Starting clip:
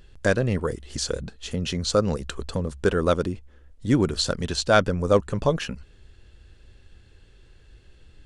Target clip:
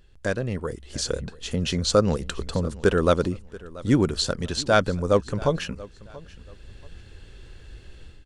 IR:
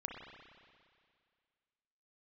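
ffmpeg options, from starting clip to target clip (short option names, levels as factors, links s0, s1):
-filter_complex "[0:a]dynaudnorm=f=620:g=3:m=4.73,asplit=2[s0][s1];[s1]aecho=0:1:683|1366:0.1|0.027[s2];[s0][s2]amix=inputs=2:normalize=0,volume=0.531"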